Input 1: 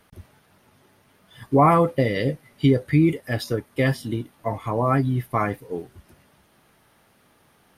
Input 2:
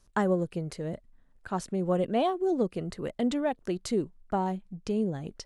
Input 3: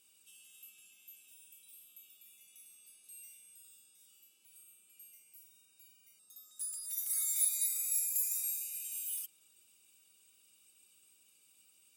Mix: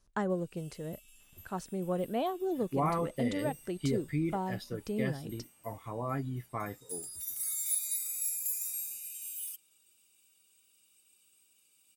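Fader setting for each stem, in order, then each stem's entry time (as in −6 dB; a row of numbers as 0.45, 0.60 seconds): −14.5, −6.0, −1.0 decibels; 1.20, 0.00, 0.30 seconds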